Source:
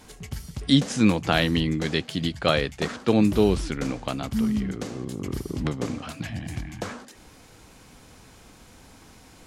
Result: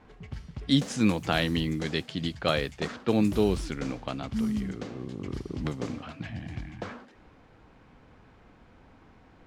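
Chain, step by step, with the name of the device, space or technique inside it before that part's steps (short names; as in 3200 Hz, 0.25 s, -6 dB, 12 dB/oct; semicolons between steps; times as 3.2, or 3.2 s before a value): cassette deck with a dynamic noise filter (white noise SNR 29 dB; low-pass opened by the level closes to 1700 Hz, open at -19 dBFS); gain -4.5 dB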